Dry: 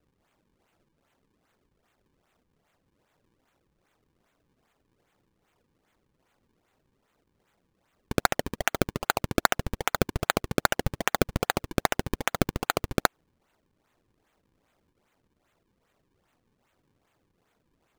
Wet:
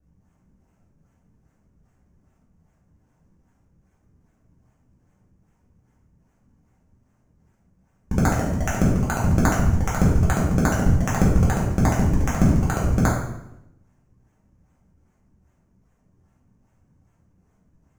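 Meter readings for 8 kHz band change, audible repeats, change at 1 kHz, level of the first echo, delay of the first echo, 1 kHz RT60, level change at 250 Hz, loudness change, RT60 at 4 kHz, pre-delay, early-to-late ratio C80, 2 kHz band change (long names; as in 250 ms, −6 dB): +2.5 dB, no echo audible, +1.5 dB, no echo audible, no echo audible, 0.80 s, +11.0 dB, +7.0 dB, 0.70 s, 3 ms, 5.5 dB, −0.5 dB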